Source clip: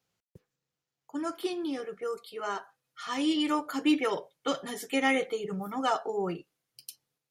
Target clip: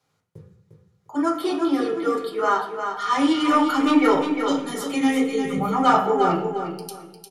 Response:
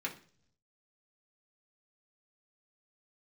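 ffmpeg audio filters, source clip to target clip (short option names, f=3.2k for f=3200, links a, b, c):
-filter_complex "[0:a]asettb=1/sr,asplit=3[a][b][c];[a]atrim=end=4.334[d];[b]atrim=start=4.33:end=5.58,asetpts=PTS-STARTPTS,afade=t=in:d=0.004:c=qsin,afade=t=out:st=1.246:d=0.004:c=qsin,acrossover=split=350|3000[e][f][g];[f]acompressor=threshold=-46dB:ratio=3[h];[e][h][g]amix=inputs=3:normalize=0[i];[c]atrim=start=5.576[j];[d][i]acrossfade=d=0.004:c1=hsin:c2=qsin[k];[k][j]acrossfade=d=0.004:c1=qsin:c2=hsin,asoftclip=type=tanh:threshold=-22dB,aecho=1:1:352|704|1056:0.447|0.112|0.0279[l];[1:a]atrim=start_sample=2205,asetrate=24255,aresample=44100[m];[l][m]afir=irnorm=-1:irlink=0,volume=5.5dB"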